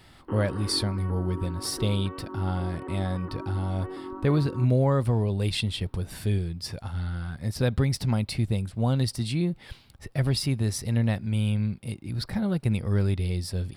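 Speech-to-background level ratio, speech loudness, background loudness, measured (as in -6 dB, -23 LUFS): 11.5 dB, -27.5 LUFS, -39.0 LUFS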